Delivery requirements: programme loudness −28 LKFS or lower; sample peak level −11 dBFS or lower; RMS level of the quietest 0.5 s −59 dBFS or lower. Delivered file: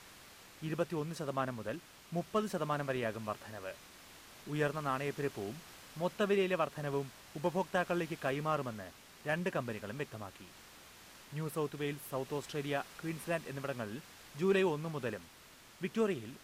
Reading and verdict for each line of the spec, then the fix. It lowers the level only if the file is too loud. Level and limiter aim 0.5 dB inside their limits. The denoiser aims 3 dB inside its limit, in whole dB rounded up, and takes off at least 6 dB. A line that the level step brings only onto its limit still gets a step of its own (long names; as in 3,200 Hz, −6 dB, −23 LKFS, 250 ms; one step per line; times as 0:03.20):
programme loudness −37.0 LKFS: in spec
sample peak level −20.0 dBFS: in spec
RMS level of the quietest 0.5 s −58 dBFS: out of spec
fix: broadband denoise 6 dB, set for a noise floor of −58 dBFS